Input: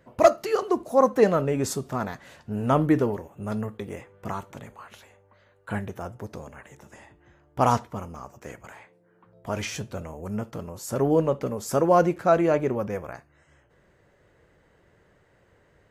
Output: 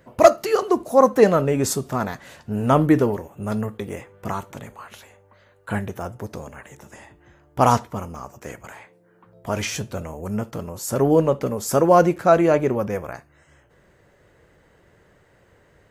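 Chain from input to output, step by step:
high-shelf EQ 7,400 Hz +5 dB
level +4.5 dB

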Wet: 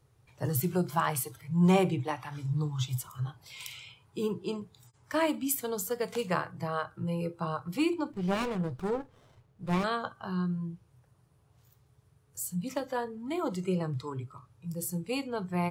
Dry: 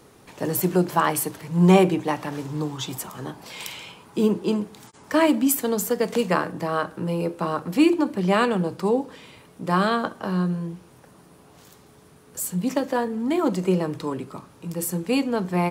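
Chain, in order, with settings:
noise reduction from a noise print of the clip's start 12 dB
low shelf with overshoot 160 Hz +10.5 dB, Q 3
0:08.12–0:09.84: windowed peak hold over 17 samples
level −7.5 dB

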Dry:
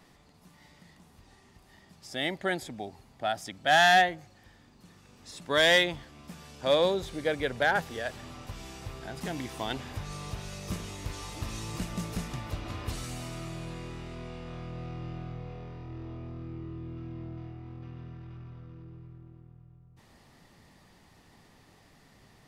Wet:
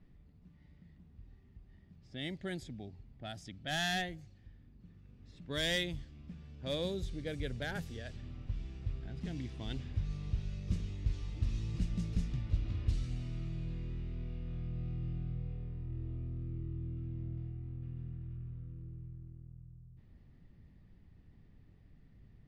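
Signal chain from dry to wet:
low-pass that shuts in the quiet parts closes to 1,900 Hz, open at −24 dBFS
guitar amp tone stack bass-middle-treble 10-0-1
level +13 dB

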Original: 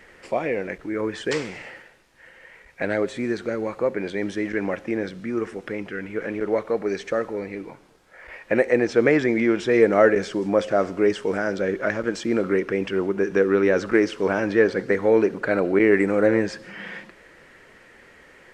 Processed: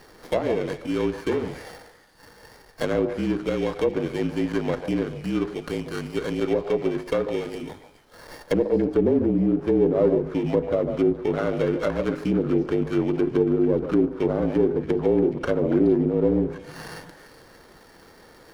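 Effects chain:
samples in bit-reversed order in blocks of 16 samples
treble cut that deepens with the level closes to 530 Hz, closed at −16.5 dBFS
mains-hum notches 50/100/150/200/250/300/350/400/450 Hz
in parallel at −1 dB: brickwall limiter −16.5 dBFS, peak gain reduction 8 dB
on the sum: frequency shifter −40 Hz
on a send: echo through a band-pass that steps 141 ms, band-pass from 670 Hz, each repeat 1.4 octaves, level −7 dB
on the sum: windowed peak hold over 5 samples
level −3 dB

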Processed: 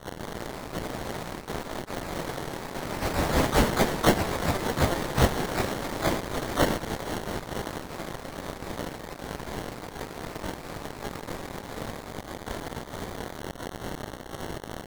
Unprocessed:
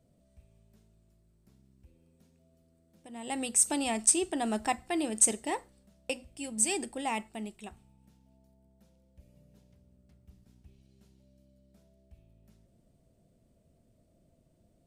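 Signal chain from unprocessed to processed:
spike at every zero crossing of −24 dBFS
high-pass filter 1,400 Hz 6 dB per octave
decimation without filtering 36×
pitch-shifted copies added +12 semitones −3 dB
delay with pitch and tempo change per echo 170 ms, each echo +2 semitones, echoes 3

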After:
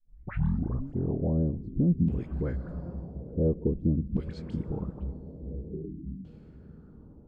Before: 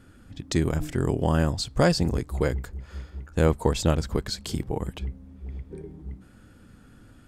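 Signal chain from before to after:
turntable start at the beginning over 0.95 s
all-pass dispersion highs, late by 49 ms, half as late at 1,400 Hz
on a send: feedback delay with all-pass diffusion 941 ms, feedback 44%, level −15 dB
on the sum: auto-filter low-pass saw down 0.48 Hz 210–2,900 Hz
drawn EQ curve 120 Hz 0 dB, 200 Hz +4 dB, 750 Hz −11 dB, 1,900 Hz −17 dB, 9,900 Hz −2 dB
in parallel at −2 dB: brickwall limiter −23 dBFS, peak gain reduction 14 dB
on the sum: gain on a spectral selection 0:05.86–0:06.24, 420–1,200 Hz −27 dB
level −8 dB

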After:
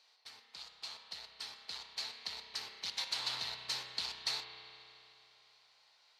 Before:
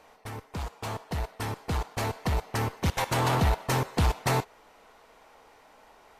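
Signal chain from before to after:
resonant band-pass 4,300 Hz, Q 4.9
spring reverb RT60 3 s, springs 32 ms, chirp 45 ms, DRR 4 dB
level +5.5 dB

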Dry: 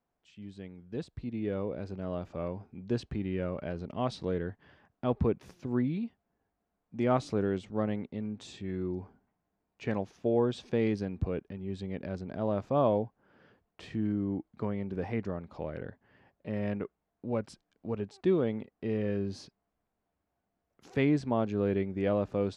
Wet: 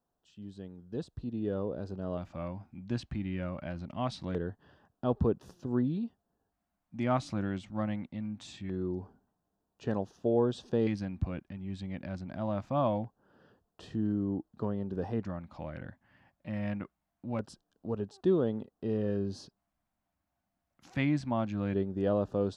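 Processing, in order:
auto-filter notch square 0.23 Hz 430–2,200 Hz

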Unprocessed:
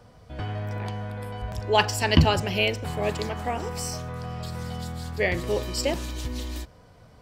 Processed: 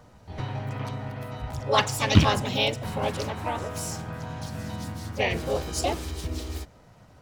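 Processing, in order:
loose part that buzzes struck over −16 dBFS, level −13 dBFS
pitch-shifted copies added +4 semitones −1 dB, +5 semitones −4 dB
level −4.5 dB

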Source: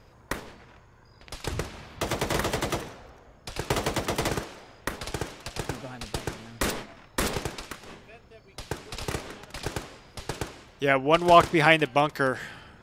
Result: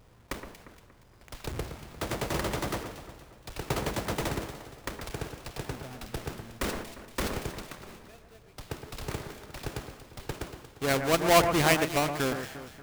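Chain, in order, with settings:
each half-wave held at its own peak
delay that swaps between a low-pass and a high-pass 117 ms, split 2,200 Hz, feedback 65%, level −8 dB
level −8.5 dB

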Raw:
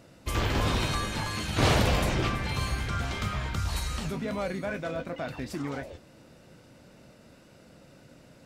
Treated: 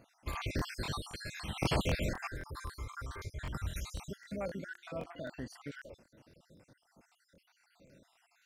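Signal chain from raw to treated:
time-frequency cells dropped at random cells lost 59%
0:02.27–0:03.39: phaser with its sweep stopped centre 750 Hz, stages 6
0:04.16–0:05.32: hum removal 348.3 Hz, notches 4
regular buffer underruns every 0.26 s, samples 1,024, repeat, from 0:00.31
level −6 dB

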